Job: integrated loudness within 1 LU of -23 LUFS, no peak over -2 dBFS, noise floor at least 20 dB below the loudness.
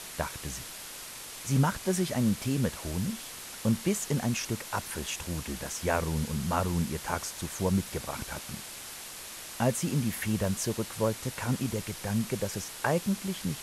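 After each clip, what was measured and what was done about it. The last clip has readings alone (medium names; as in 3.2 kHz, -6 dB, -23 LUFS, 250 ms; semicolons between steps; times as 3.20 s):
noise floor -43 dBFS; noise floor target -52 dBFS; loudness -31.5 LUFS; peak level -11.0 dBFS; loudness target -23.0 LUFS
-> noise reduction 9 dB, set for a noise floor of -43 dBFS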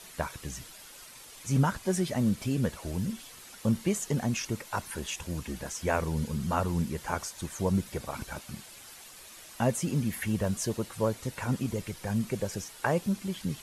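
noise floor -49 dBFS; noise floor target -52 dBFS
-> noise reduction 6 dB, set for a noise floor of -49 dBFS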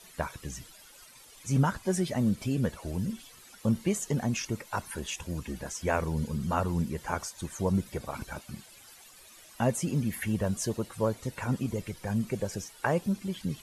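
noise floor -53 dBFS; loudness -31.5 LUFS; peak level -11.0 dBFS; loudness target -23.0 LUFS
-> trim +8.5 dB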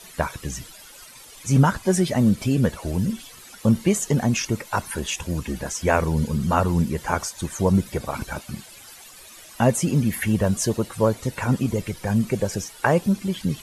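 loudness -23.0 LUFS; peak level -2.5 dBFS; noise floor -45 dBFS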